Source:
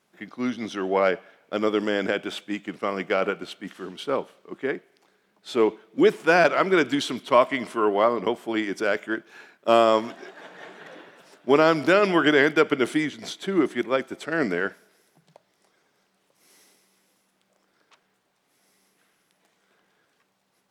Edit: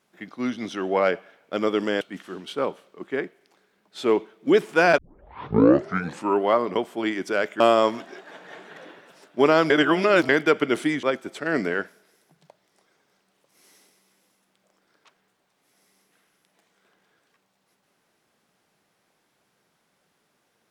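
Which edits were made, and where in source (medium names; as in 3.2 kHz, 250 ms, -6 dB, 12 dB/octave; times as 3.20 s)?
2.01–3.52 s: delete
6.49 s: tape start 1.44 s
9.11–9.70 s: delete
11.80–12.39 s: reverse
13.13–13.89 s: delete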